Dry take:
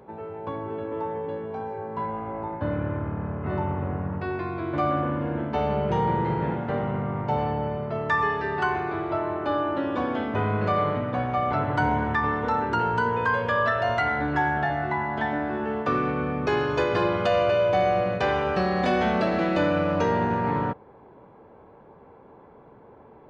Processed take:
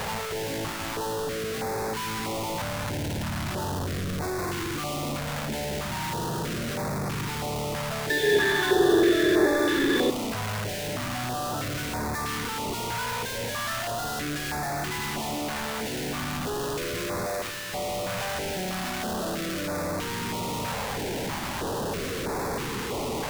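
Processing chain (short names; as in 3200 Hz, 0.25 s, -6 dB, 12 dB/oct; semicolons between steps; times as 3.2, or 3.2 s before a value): infinite clipping; 8.1–10.1 small resonant body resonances 390/1700/3500 Hz, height 18 dB, ringing for 30 ms; stepped notch 3.1 Hz 340–3000 Hz; gain -3 dB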